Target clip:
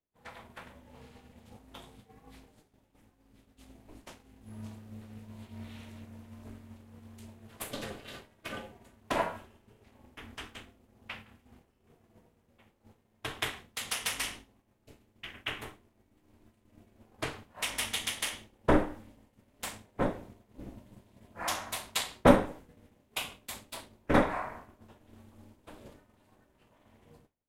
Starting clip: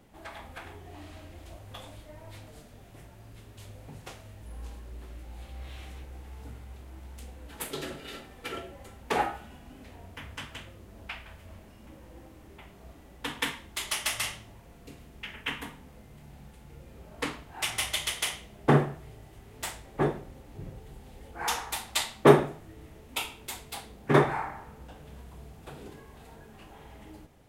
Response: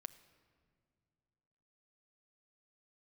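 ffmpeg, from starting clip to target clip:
-af "agate=range=-33dB:threshold=-40dB:ratio=3:detection=peak,aeval=exprs='val(0)*sin(2*PI*160*n/s)':c=same"

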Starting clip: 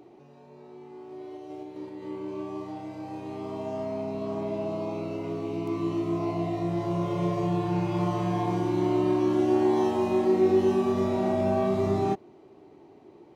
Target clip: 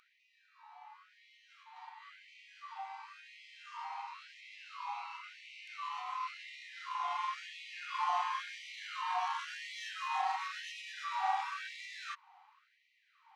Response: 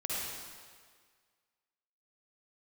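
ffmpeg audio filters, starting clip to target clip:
-af "adynamicsmooth=sensitivity=5.5:basefreq=3.7k,afftfilt=real='re*gte(b*sr/1024,710*pow(1900/710,0.5+0.5*sin(2*PI*0.95*pts/sr)))':imag='im*gte(b*sr/1024,710*pow(1900/710,0.5+0.5*sin(2*PI*0.95*pts/sr)))':win_size=1024:overlap=0.75,volume=4dB"

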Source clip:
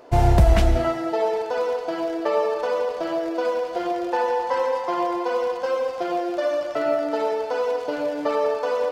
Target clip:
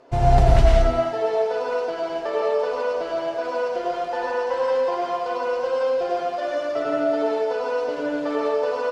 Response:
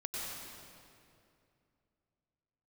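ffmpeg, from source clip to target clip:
-filter_complex "[0:a]lowpass=7.8k,aecho=1:1:7.4:0.39[a];[1:a]atrim=start_sample=2205,afade=t=out:st=0.29:d=0.01,atrim=end_sample=13230,asetrate=48510,aresample=44100[b];[a][b]afir=irnorm=-1:irlink=0"

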